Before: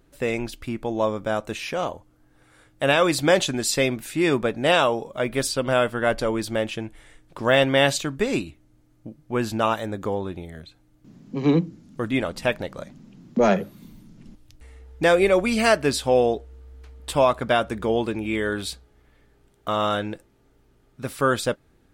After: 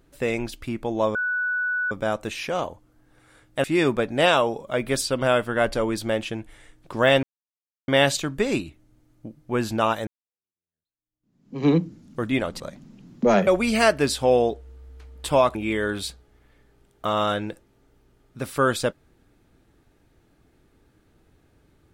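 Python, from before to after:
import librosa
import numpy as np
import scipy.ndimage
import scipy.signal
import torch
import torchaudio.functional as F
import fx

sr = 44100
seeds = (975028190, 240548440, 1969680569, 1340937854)

y = fx.edit(x, sr, fx.insert_tone(at_s=1.15, length_s=0.76, hz=1480.0, db=-22.0),
    fx.cut(start_s=2.88, length_s=1.22),
    fx.insert_silence(at_s=7.69, length_s=0.65),
    fx.fade_in_span(start_s=9.88, length_s=1.57, curve='exp'),
    fx.cut(start_s=12.41, length_s=0.33),
    fx.cut(start_s=13.61, length_s=1.7),
    fx.cut(start_s=17.39, length_s=0.79), tone=tone)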